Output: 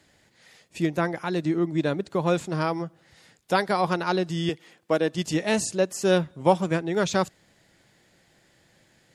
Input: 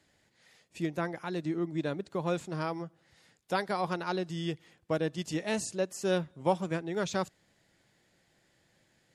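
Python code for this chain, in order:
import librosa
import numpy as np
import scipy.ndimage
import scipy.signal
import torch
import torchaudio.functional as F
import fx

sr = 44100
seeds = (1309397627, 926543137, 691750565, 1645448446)

y = fx.highpass(x, sr, hz=230.0, slope=12, at=(4.49, 5.15))
y = F.gain(torch.from_numpy(y), 8.0).numpy()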